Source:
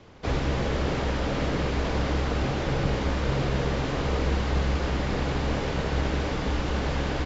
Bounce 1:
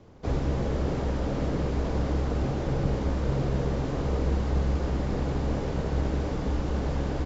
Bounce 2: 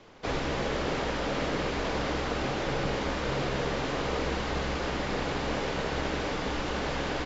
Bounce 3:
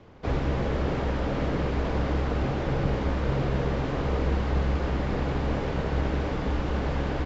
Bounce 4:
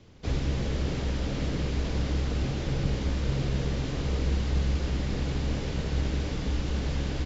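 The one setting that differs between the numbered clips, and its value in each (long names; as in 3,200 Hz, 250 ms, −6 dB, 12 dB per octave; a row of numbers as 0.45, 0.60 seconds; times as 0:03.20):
parametric band, centre frequency: 2,700, 70, 13,000, 1,000 Hertz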